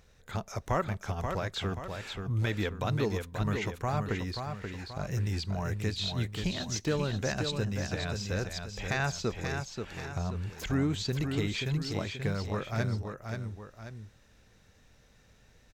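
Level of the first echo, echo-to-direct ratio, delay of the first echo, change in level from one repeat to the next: -6.0 dB, -5.0 dB, 0.532 s, -7.0 dB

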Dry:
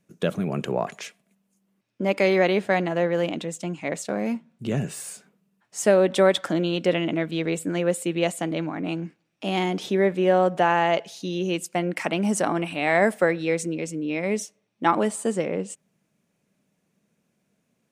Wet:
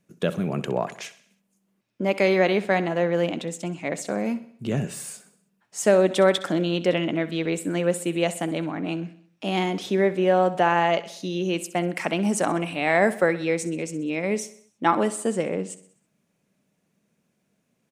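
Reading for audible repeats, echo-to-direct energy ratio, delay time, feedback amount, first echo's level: 4, -14.5 dB, 64 ms, 52%, -16.0 dB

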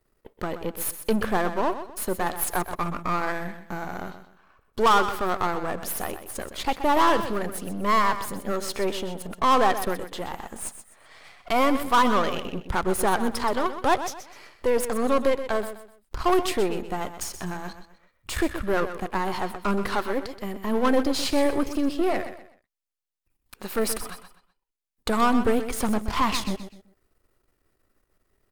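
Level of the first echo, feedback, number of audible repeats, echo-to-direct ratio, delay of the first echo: -11.0 dB, 31%, 3, -10.5 dB, 0.126 s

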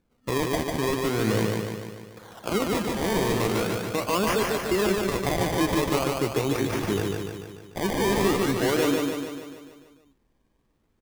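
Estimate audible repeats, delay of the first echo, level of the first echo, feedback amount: 7, 0.147 s, -3.0 dB, 58%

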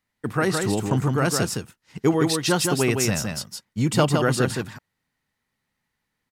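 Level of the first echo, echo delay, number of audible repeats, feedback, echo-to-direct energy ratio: -4.5 dB, 0.163 s, 1, no steady repeat, -4.5 dB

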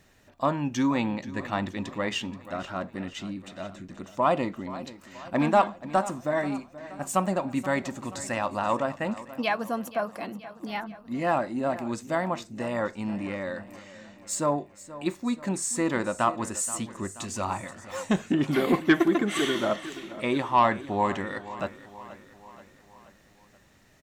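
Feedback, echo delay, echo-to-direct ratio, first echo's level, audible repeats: 55%, 0.479 s, -14.5 dB, -16.0 dB, 4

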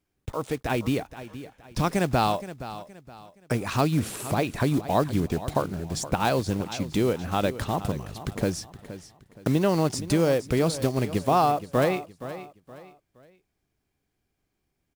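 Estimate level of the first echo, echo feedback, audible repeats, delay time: -14.0 dB, 34%, 3, 0.47 s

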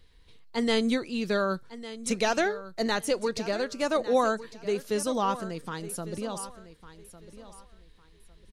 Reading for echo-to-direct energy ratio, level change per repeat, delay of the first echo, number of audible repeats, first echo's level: -14.5 dB, -12.5 dB, 1.153 s, 2, -15.0 dB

